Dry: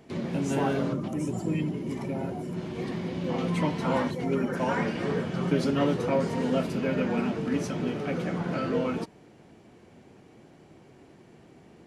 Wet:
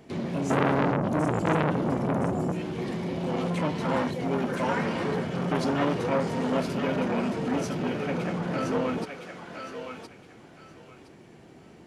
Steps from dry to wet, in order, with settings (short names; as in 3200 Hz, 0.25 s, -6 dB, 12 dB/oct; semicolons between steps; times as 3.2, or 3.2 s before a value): 0.5–2.52 low shelf 470 Hz +10.5 dB; thinning echo 1.016 s, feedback 27%, high-pass 930 Hz, level -5 dB; core saturation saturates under 1400 Hz; gain +2 dB